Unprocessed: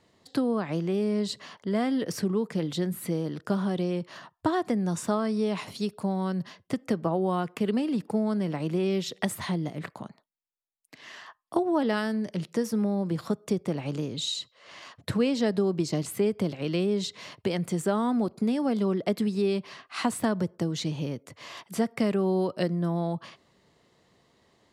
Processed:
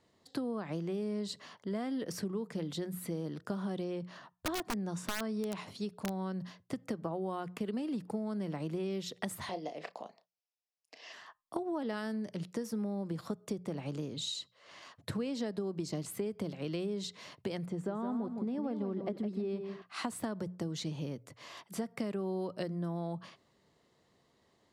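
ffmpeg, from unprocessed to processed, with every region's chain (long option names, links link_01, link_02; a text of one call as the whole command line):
ffmpeg -i in.wav -filter_complex "[0:a]asettb=1/sr,asplit=3[link_01][link_02][link_03];[link_01]atrim=end=3.844[link_04];[link_02]atrim=start=3.84:end=6.43,asetpts=PTS-STARTPTS,afade=type=in:duration=0.004:curve=qsin,afade=type=out:start_time=2.586:duration=0.004:curve=qsin,highshelf=frequency=9300:gain=-10.5,aeval=exprs='(mod(8.41*val(0)+1,2)-1)/8.41':channel_layout=same[link_05];[link_03]atrim=start=6.426[link_06];[link_04][link_05]acrossfade=duration=0.004:curve1=hsin:curve2=qsin[link_07];[link_07][link_06]acrossfade=duration=0.004:curve1=qsin:curve2=hsin,asettb=1/sr,asplit=3[link_08][link_09][link_10];[link_08]atrim=end=9.494[link_11];[link_09]atrim=start=9.49:end=11.13,asetpts=PTS-STARTPTS,afade=type=in:duration=0.004:curve=qsin,afade=type=out:start_time=1.636:duration=0.004:curve=qsin,highpass=390,equalizer=frequency=490:width_type=q:width=4:gain=7,equalizer=frequency=700:width_type=q:width=4:gain=9,equalizer=frequency=1400:width_type=q:width=4:gain=-6,equalizer=frequency=2700:width_type=q:width=4:gain=7,equalizer=frequency=5200:width_type=q:width=4:gain=10,equalizer=frequency=8800:width_type=q:width=4:gain=-9,lowpass=frequency=9600:width=0.5412,lowpass=frequency=9600:width=1.3066,asplit=2[link_12][link_13];[link_13]adelay=32,volume=-11.5dB[link_14];[link_12][link_14]amix=inputs=2:normalize=0,atrim=end_sample=72324[link_15];[link_10]atrim=start=11.126[link_16];[link_11][link_15]acrossfade=duration=0.004:curve1=hsin:curve2=qsin[link_17];[link_17][link_16]acrossfade=duration=0.004:curve1=qsin:curve2=hsin,asettb=1/sr,asplit=3[link_18][link_19][link_20];[link_18]atrim=end=17.664[link_21];[link_19]atrim=start=17.66:end=19.82,asetpts=PTS-STARTPTS,afade=type=in:duration=0.004:curve=qsin,afade=type=out:start_time=2.156:duration=0.004:curve=qsin,lowpass=frequency=1300:poles=1,aecho=1:1:161|322|483:0.376|0.105|0.0295,atrim=end_sample=95256[link_22];[link_20]atrim=start=19.816[link_23];[link_21][link_22]acrossfade=duration=0.004:curve1=hsin:curve2=qsin[link_24];[link_24][link_23]acrossfade=duration=0.004:curve1=qsin:curve2=hsin,equalizer=frequency=2500:width=1.5:gain=-2,bandreject=frequency=60:width_type=h:width=6,bandreject=frequency=120:width_type=h:width=6,bandreject=frequency=180:width_type=h:width=6,acompressor=threshold=-26dB:ratio=6,volume=-6dB" out.wav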